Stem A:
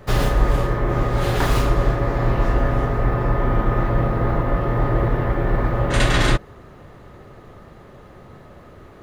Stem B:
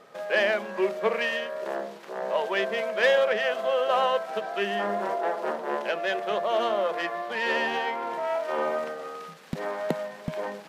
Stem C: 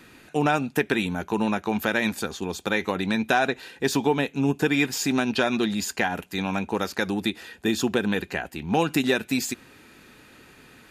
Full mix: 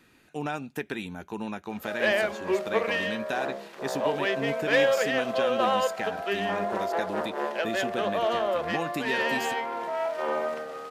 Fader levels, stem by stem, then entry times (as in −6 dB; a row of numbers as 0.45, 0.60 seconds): muted, −1.0 dB, −10.0 dB; muted, 1.70 s, 0.00 s